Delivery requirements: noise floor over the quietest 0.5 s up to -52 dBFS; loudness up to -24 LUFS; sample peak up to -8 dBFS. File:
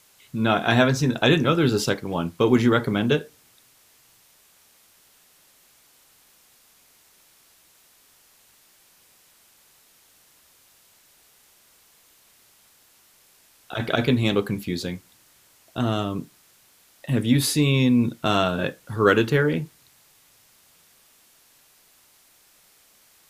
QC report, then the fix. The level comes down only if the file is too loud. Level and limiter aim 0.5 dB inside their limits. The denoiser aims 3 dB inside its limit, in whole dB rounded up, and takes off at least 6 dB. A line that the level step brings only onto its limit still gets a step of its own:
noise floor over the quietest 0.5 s -58 dBFS: pass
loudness -22.0 LUFS: fail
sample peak -4.5 dBFS: fail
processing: trim -2.5 dB; peak limiter -8.5 dBFS

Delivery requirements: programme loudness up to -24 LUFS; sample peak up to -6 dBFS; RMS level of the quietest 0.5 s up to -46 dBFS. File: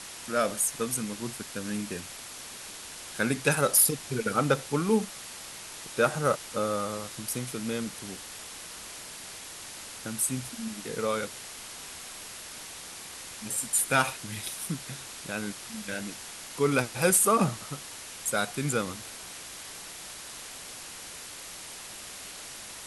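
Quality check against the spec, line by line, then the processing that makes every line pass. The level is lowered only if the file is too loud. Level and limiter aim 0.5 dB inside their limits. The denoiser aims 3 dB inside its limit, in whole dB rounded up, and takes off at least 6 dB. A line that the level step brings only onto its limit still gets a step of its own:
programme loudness -30.5 LUFS: pass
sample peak -8.0 dBFS: pass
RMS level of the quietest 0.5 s -43 dBFS: fail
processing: noise reduction 6 dB, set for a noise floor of -43 dBFS

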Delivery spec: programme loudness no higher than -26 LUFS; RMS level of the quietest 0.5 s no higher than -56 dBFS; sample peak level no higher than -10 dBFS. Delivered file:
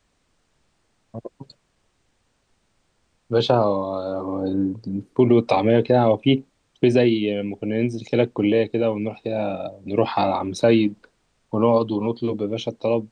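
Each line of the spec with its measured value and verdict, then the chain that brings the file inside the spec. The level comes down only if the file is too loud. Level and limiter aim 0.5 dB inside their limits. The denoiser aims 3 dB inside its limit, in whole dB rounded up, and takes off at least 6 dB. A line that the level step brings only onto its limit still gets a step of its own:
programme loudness -21.5 LUFS: fail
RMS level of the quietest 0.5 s -67 dBFS: pass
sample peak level -5.5 dBFS: fail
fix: trim -5 dB

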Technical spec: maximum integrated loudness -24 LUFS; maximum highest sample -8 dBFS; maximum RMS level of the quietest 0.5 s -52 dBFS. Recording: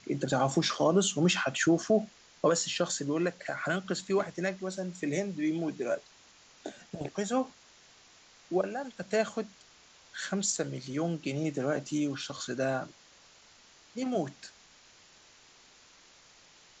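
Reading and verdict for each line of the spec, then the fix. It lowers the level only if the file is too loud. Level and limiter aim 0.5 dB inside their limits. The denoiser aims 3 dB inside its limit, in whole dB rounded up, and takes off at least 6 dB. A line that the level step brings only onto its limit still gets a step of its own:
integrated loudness -31.0 LUFS: pass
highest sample -14.5 dBFS: pass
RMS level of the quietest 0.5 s -59 dBFS: pass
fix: none needed

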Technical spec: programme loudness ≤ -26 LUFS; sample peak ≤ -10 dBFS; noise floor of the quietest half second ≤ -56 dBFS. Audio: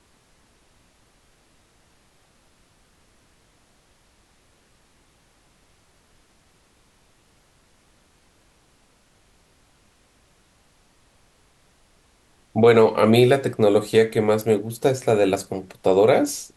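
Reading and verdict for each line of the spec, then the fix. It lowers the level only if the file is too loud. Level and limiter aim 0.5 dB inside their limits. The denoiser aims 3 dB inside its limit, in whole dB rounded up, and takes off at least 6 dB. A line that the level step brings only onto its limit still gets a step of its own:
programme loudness -19.0 LUFS: fail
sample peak -3.5 dBFS: fail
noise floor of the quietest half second -60 dBFS: pass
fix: trim -7.5 dB

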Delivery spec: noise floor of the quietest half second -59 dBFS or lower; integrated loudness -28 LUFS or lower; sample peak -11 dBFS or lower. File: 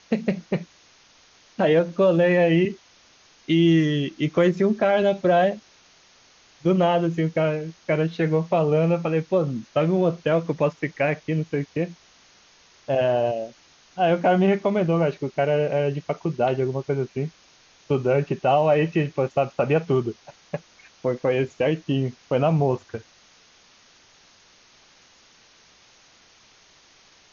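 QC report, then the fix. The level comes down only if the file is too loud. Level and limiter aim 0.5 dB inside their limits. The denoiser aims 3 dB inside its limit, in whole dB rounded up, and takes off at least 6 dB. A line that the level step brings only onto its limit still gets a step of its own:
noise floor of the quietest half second -55 dBFS: fail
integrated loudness -22.5 LUFS: fail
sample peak -9.0 dBFS: fail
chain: trim -6 dB

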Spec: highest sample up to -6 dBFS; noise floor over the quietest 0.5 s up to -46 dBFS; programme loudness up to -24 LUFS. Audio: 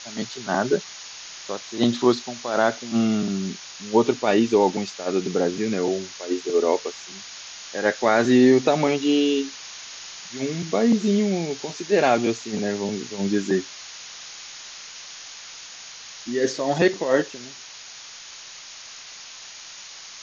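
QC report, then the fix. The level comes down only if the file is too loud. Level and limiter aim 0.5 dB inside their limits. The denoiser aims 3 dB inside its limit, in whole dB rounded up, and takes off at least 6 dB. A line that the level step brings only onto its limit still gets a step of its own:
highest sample -5.5 dBFS: fail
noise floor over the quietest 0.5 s -41 dBFS: fail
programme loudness -22.5 LUFS: fail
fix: noise reduction 6 dB, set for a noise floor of -41 dBFS; trim -2 dB

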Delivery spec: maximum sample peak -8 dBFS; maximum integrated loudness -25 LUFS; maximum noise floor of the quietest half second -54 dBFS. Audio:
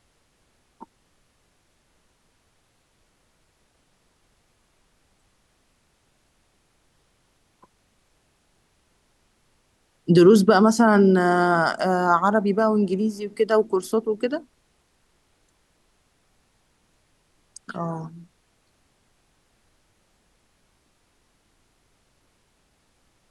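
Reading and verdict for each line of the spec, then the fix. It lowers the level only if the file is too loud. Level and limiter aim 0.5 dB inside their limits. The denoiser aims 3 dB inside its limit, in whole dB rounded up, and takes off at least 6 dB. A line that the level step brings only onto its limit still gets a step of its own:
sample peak -5.0 dBFS: fail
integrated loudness -19.5 LUFS: fail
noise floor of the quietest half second -66 dBFS: pass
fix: trim -6 dB

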